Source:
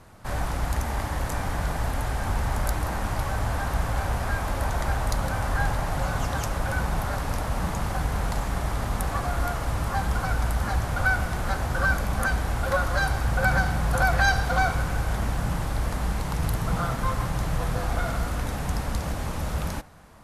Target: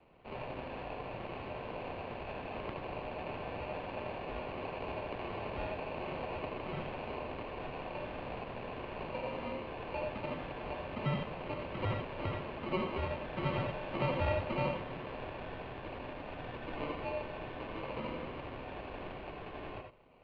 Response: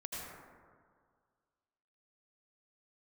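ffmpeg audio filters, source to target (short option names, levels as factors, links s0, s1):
-filter_complex "[0:a]acrusher=samples=24:mix=1:aa=0.000001,highpass=f=220:t=q:w=0.5412,highpass=f=220:t=q:w=1.307,lowpass=f=3500:t=q:w=0.5176,lowpass=f=3500:t=q:w=0.7071,lowpass=f=3500:t=q:w=1.932,afreqshift=-180[s0];[1:a]atrim=start_sample=2205,afade=t=out:st=0.14:d=0.01,atrim=end_sample=6615[s1];[s0][s1]afir=irnorm=-1:irlink=0,volume=0.631"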